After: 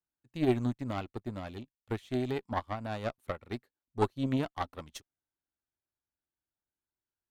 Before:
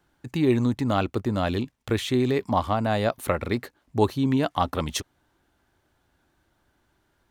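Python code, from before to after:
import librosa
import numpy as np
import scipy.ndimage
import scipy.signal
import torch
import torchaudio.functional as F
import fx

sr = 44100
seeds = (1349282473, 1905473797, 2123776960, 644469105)

y = fx.tube_stage(x, sr, drive_db=16.0, bias=0.65)
y = fx.upward_expand(y, sr, threshold_db=-40.0, expansion=2.5)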